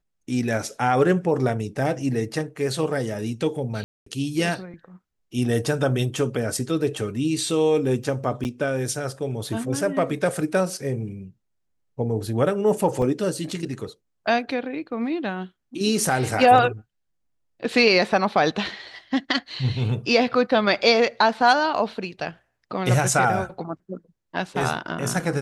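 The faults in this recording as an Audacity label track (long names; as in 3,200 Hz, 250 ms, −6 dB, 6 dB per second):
3.840000	4.060000	drop-out 224 ms
8.440000	8.450000	drop-out 9.6 ms
13.020000	13.020000	drop-out 3 ms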